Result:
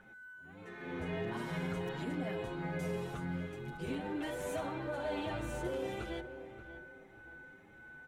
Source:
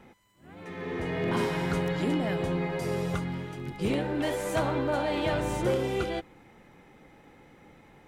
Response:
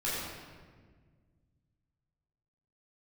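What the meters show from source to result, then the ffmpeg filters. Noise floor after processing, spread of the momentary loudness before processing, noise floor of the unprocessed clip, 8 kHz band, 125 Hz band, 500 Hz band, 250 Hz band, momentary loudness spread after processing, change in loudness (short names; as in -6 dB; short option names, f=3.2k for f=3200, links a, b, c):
-57 dBFS, 8 LU, -56 dBFS, -9.5 dB, -9.5 dB, -9.5 dB, -9.0 dB, 15 LU, -9.5 dB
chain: -filter_complex "[0:a]equalizer=f=4.9k:t=o:w=0.3:g=-5,alimiter=limit=-22dB:level=0:latency=1:release=91,aeval=exprs='val(0)+0.00708*sin(2*PI*1500*n/s)':c=same,asplit=2[a][b];[b]adelay=583,lowpass=f=1.7k:p=1,volume=-11.5dB,asplit=2[c][d];[d]adelay=583,lowpass=f=1.7k:p=1,volume=0.36,asplit=2[e][f];[f]adelay=583,lowpass=f=1.7k:p=1,volume=0.36,asplit=2[g][h];[h]adelay=583,lowpass=f=1.7k:p=1,volume=0.36[i];[a][c][e][g][i]amix=inputs=5:normalize=0,asplit=2[j][k];[1:a]atrim=start_sample=2205[l];[k][l]afir=irnorm=-1:irlink=0,volume=-23dB[m];[j][m]amix=inputs=2:normalize=0,asplit=2[n][o];[o]adelay=7.2,afreqshift=1.7[p];[n][p]amix=inputs=2:normalize=1,volume=-5dB"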